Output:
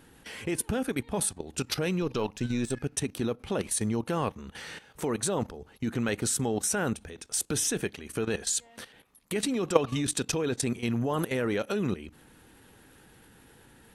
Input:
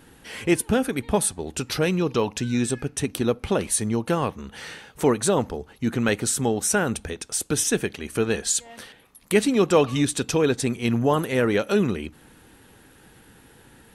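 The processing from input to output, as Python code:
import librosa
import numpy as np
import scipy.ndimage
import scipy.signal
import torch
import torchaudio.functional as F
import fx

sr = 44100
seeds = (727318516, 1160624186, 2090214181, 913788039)

y = fx.halfwave_gain(x, sr, db=-3.0, at=(2.02, 2.8))
y = fx.doubler(y, sr, ms=26.0, db=-12.5, at=(4.46, 5.05))
y = fx.level_steps(y, sr, step_db=14)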